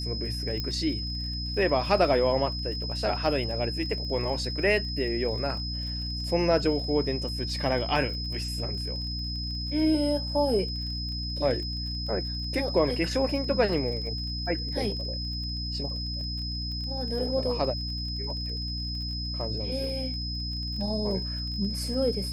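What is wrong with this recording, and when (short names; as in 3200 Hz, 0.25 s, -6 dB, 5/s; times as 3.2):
crackle 31/s -37 dBFS
hum 60 Hz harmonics 5 -34 dBFS
tone 5100 Hz -34 dBFS
0.6 pop -18 dBFS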